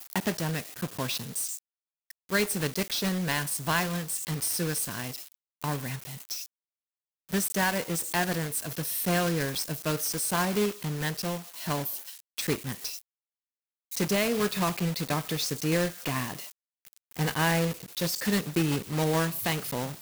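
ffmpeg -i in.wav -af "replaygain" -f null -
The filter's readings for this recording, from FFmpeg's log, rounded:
track_gain = +9.9 dB
track_peak = 0.131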